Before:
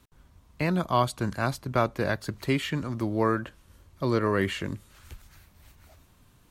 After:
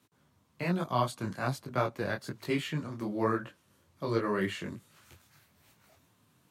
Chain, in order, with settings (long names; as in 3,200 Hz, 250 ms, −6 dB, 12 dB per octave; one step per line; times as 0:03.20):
high-pass filter 110 Hz 24 dB per octave
micro pitch shift up and down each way 42 cents
level −1.5 dB